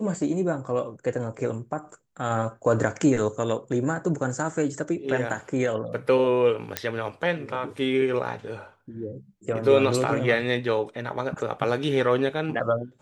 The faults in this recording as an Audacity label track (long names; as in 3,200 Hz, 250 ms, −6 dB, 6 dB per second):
6.770000	6.770000	click −7 dBFS